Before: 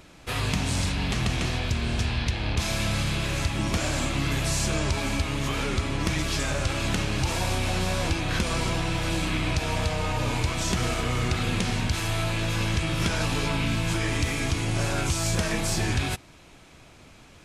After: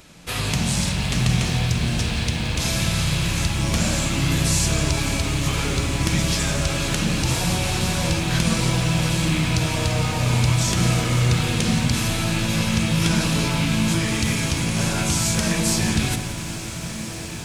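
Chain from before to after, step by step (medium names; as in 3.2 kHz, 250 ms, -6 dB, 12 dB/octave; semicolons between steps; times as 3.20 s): treble shelf 3.3 kHz +8.5 dB; echo that smears into a reverb 1490 ms, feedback 67%, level -12 dB; on a send at -9 dB: reverberation RT60 0.45 s, pre-delay 46 ms; on the sum: bit-crushed delay 172 ms, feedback 80%, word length 7-bit, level -13 dB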